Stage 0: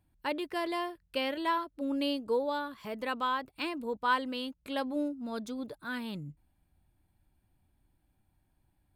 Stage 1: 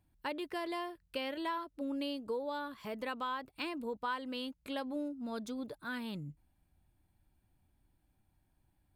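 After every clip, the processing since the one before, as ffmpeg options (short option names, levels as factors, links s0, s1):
-af "acompressor=threshold=0.02:ratio=3,volume=0.841"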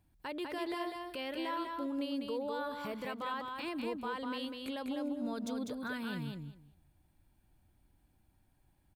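-af "alimiter=level_in=3.16:limit=0.0631:level=0:latency=1:release=55,volume=0.316,aecho=1:1:199|398|597:0.631|0.107|0.0182,volume=1.33"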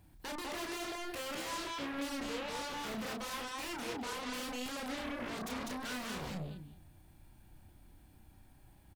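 -filter_complex "[0:a]asplit=2[s0][s1];[s1]aeval=exprs='0.0447*sin(PI/2*7.94*val(0)/0.0447)':c=same,volume=0.398[s2];[s0][s2]amix=inputs=2:normalize=0,asplit=2[s3][s4];[s4]adelay=32,volume=0.596[s5];[s3][s5]amix=inputs=2:normalize=0,volume=0.473"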